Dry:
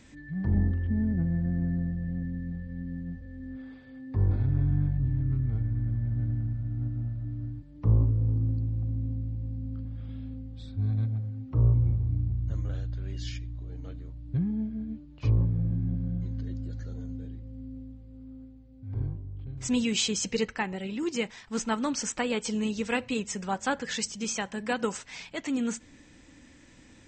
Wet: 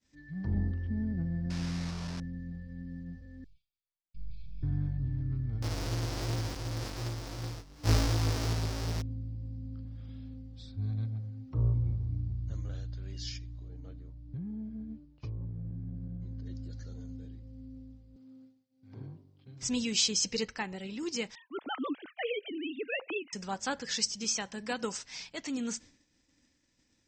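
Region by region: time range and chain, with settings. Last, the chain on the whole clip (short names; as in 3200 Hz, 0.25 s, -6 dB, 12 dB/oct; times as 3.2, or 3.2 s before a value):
1.5–2.2 delta modulation 64 kbps, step -31 dBFS + air absorption 50 m
3.44–4.63 robotiser 230 Hz + brick-wall FIR band-stop 170–2200 Hz
5.62–9.02 half-waves squared off + chorus 2.7 Hz, delay 17 ms, depth 4.8 ms
13.68–16.46 high shelf 2200 Hz -10.5 dB + compressor 4:1, threshold -30 dBFS
18.16–19.63 HPF 140 Hz 24 dB/oct + mismatched tape noise reduction encoder only
21.35–23.33 sine-wave speech + low shelf 220 Hz -5.5 dB
whole clip: expander -44 dBFS; bell 5200 Hz +12 dB 0.79 oct; gain -6 dB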